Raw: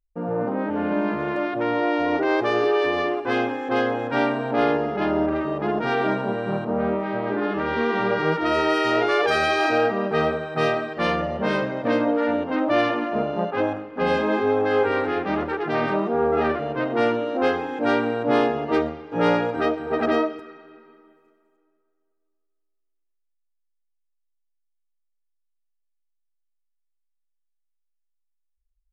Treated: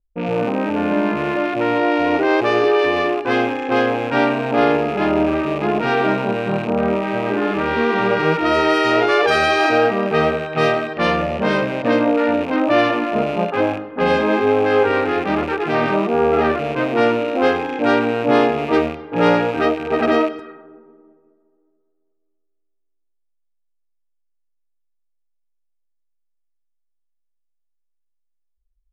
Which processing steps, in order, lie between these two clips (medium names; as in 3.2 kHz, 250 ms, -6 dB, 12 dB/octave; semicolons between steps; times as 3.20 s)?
rattle on loud lows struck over -37 dBFS, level -27 dBFS; level-controlled noise filter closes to 590 Hz, open at -22 dBFS; trim +5 dB